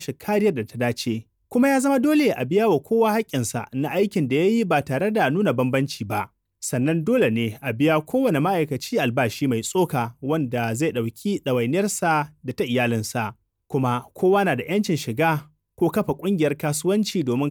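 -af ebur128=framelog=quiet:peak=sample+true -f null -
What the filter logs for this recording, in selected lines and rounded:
Integrated loudness:
  I:         -22.4 LUFS
  Threshold: -32.5 LUFS
Loudness range:
  LRA:         2.7 LU
  Threshold: -42.5 LUFS
  LRA low:   -23.7 LUFS
  LRA high:  -21.0 LUFS
Sample peak:
  Peak:       -7.8 dBFS
True peak:
  Peak:       -7.8 dBFS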